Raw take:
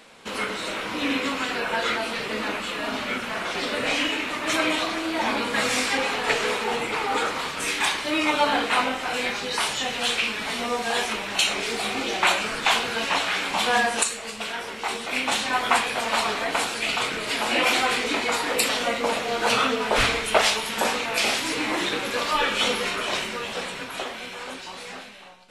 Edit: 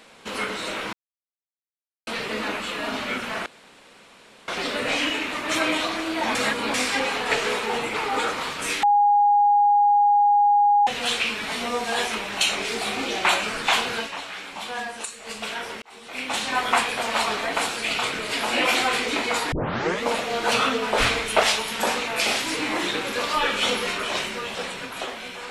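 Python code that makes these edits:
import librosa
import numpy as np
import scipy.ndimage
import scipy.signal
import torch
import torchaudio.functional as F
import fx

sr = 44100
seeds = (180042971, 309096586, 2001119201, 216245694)

y = fx.edit(x, sr, fx.silence(start_s=0.93, length_s=1.14),
    fx.insert_room_tone(at_s=3.46, length_s=1.02),
    fx.reverse_span(start_s=5.33, length_s=0.39),
    fx.bleep(start_s=7.81, length_s=2.04, hz=821.0, db=-14.0),
    fx.fade_down_up(start_s=12.96, length_s=1.32, db=-10.0, fade_s=0.17, curve='qua'),
    fx.fade_in_span(start_s=14.8, length_s=0.71),
    fx.tape_start(start_s=18.5, length_s=0.52), tone=tone)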